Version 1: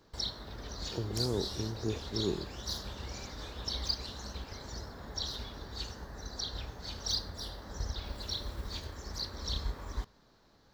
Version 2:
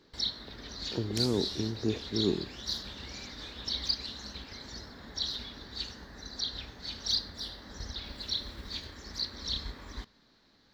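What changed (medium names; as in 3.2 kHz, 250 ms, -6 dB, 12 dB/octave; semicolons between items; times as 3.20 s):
first sound -6.0 dB; master: add ten-band graphic EQ 250 Hz +8 dB, 2 kHz +8 dB, 4 kHz +10 dB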